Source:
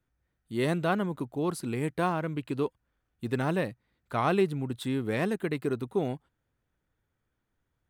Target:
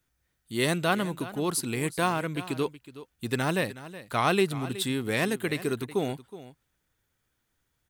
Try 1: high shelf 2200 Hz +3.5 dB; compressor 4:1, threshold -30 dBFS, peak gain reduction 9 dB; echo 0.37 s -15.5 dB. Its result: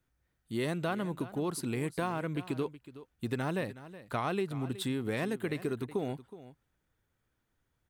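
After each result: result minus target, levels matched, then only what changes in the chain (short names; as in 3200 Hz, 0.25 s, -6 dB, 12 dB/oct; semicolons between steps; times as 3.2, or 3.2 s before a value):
compressor: peak gain reduction +9 dB; 4000 Hz band -4.0 dB
remove: compressor 4:1, threshold -30 dBFS, peak gain reduction 9 dB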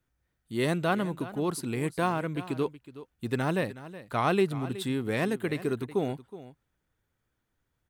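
4000 Hz band -5.5 dB
change: high shelf 2200 Hz +13 dB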